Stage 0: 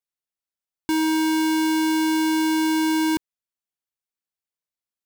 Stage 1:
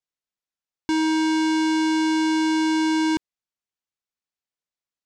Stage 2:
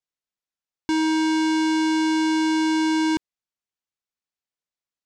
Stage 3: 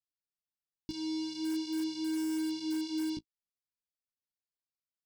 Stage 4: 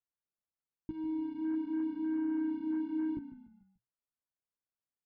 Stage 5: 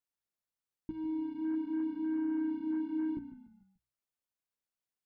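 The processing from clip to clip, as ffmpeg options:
ffmpeg -i in.wav -af "lowpass=frequency=7500:width=0.5412,lowpass=frequency=7500:width=1.3066" out.wav
ffmpeg -i in.wav -af anull out.wav
ffmpeg -i in.wav -filter_complex "[0:a]firequalizer=gain_entry='entry(160,0);entry(500,-15);entry(980,-23);entry(1700,-30);entry(2600,-11);entry(4900,0);entry(6900,-12);entry(11000,-9)':delay=0.05:min_phase=1,flanger=delay=9.4:depth=8.7:regen=-13:speed=0.44:shape=sinusoidal,asplit=2[link_01][link_02];[link_02]aeval=exprs='(mod(17.8*val(0)+1,2)-1)/17.8':channel_layout=same,volume=-9.5dB[link_03];[link_01][link_03]amix=inputs=2:normalize=0,volume=-5dB" out.wav
ffmpeg -i in.wav -filter_complex "[0:a]lowpass=frequency=1600:width=0.5412,lowpass=frequency=1600:width=1.3066,asplit=2[link_01][link_02];[link_02]asplit=4[link_03][link_04][link_05][link_06];[link_03]adelay=146,afreqshift=-31,volume=-12.5dB[link_07];[link_04]adelay=292,afreqshift=-62,volume=-20dB[link_08];[link_05]adelay=438,afreqshift=-93,volume=-27.6dB[link_09];[link_06]adelay=584,afreqshift=-124,volume=-35.1dB[link_10];[link_07][link_08][link_09][link_10]amix=inputs=4:normalize=0[link_11];[link_01][link_11]amix=inputs=2:normalize=0" out.wav
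ffmpeg -i in.wav -af "bandreject=frequency=60:width_type=h:width=6,bandreject=frequency=120:width_type=h:width=6" out.wav

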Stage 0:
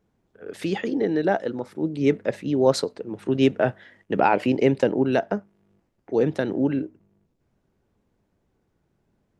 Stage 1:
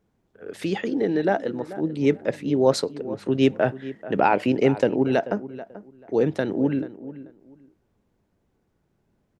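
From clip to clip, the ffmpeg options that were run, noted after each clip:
ffmpeg -i in.wav -filter_complex "[0:a]asplit=2[link_01][link_02];[link_02]adelay=436,lowpass=frequency=2000:poles=1,volume=-15dB,asplit=2[link_03][link_04];[link_04]adelay=436,lowpass=frequency=2000:poles=1,volume=0.22[link_05];[link_01][link_03][link_05]amix=inputs=3:normalize=0" out.wav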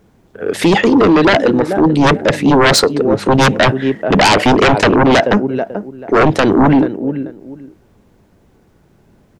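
ffmpeg -i in.wav -af "aeval=exprs='0.531*sin(PI/2*5.62*val(0)/0.531)':channel_layout=same" out.wav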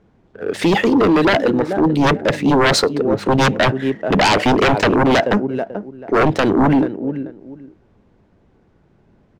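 ffmpeg -i in.wav -af "adynamicsmooth=sensitivity=7:basefreq=4400,volume=-4dB" out.wav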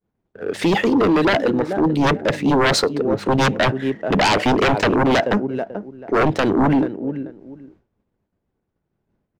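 ffmpeg -i in.wav -af "agate=range=-33dB:threshold=-43dB:ratio=3:detection=peak,volume=-2.5dB" out.wav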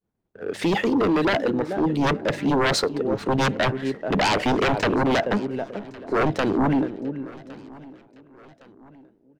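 ffmpeg -i in.wav -af "aecho=1:1:1111|2222|3333:0.0794|0.0373|0.0175,volume=-4.5dB" out.wav

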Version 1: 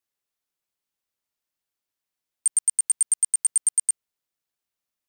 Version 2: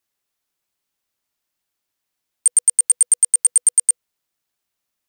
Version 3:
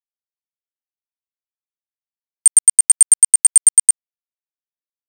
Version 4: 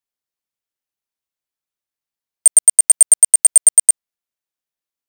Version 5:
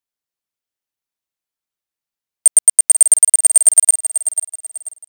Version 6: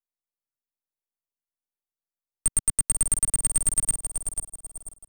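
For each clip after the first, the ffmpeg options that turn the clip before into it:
ffmpeg -i in.wav -af "bandreject=frequency=490:width=16,volume=7dB" out.wav
ffmpeg -i in.wav -af "aeval=exprs='sgn(val(0))*max(abs(val(0))-0.0178,0)':channel_layout=same,volume=5dB" out.wav
ffmpeg -i in.wav -af "acontrast=90,volume=-1dB" out.wav
ffmpeg -i in.wav -af "aecho=1:1:489|978|1467|1956:0.316|0.104|0.0344|0.0114" out.wav
ffmpeg -i in.wav -filter_complex "[0:a]aeval=exprs='if(lt(val(0),0),0.251*val(0),val(0))':channel_layout=same,acrossover=split=190|1500|6700[link_01][link_02][link_03][link_04];[link_03]acrusher=bits=5:dc=4:mix=0:aa=0.000001[link_05];[link_01][link_02][link_05][link_04]amix=inputs=4:normalize=0,asoftclip=type=tanh:threshold=-8.5dB,volume=-6dB" out.wav

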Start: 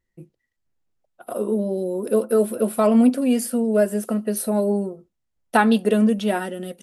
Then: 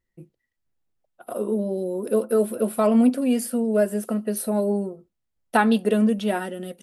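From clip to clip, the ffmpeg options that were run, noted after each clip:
ffmpeg -i in.wav -af "equalizer=frequency=6400:width_type=o:width=0.77:gain=-2,volume=-2dB" out.wav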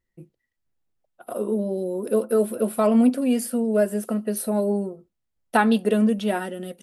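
ffmpeg -i in.wav -af anull out.wav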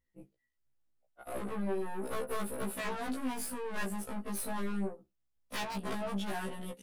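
ffmpeg -i in.wav -af "aeval=exprs='0.106*(abs(mod(val(0)/0.106+3,4)-2)-1)':channel_layout=same,aeval=exprs='(tanh(39.8*val(0)+0.6)-tanh(0.6))/39.8':channel_layout=same,afftfilt=real='re*1.73*eq(mod(b,3),0)':imag='im*1.73*eq(mod(b,3),0)':win_size=2048:overlap=0.75" out.wav

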